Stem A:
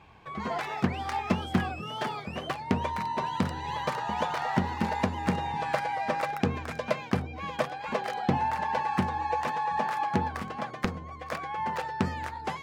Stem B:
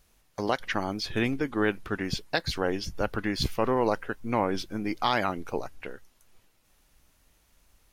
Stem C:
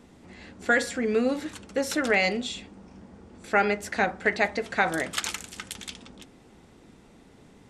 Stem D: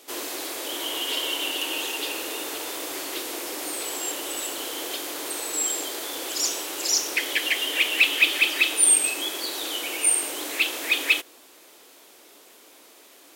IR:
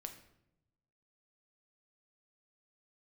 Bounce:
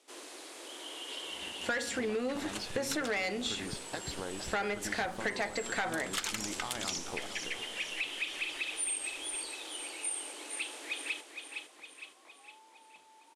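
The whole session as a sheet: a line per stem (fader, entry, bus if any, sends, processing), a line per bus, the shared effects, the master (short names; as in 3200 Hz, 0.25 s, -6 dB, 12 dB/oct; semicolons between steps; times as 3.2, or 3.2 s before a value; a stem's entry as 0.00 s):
-15.5 dB, 0.95 s, no send, no echo send, band-pass 880 Hz, Q 5.6; compressor, threshold -44 dBFS, peak gain reduction 16.5 dB
-7.5 dB, 1.60 s, no send, echo send -11 dB, compressor, threshold -28 dBFS, peak gain reduction 8.5 dB
+3.0 dB, 1.00 s, no send, no echo send, low shelf 380 Hz -5.5 dB; de-hum 46.13 Hz, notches 6; expander -41 dBFS
-14.0 dB, 0.00 s, no send, echo send -8 dB, elliptic band-pass 150–9800 Hz, stop band 40 dB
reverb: off
echo: feedback echo 0.46 s, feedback 50%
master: soft clip -17 dBFS, distortion -11 dB; compressor 6:1, threshold -31 dBFS, peak gain reduction 10.5 dB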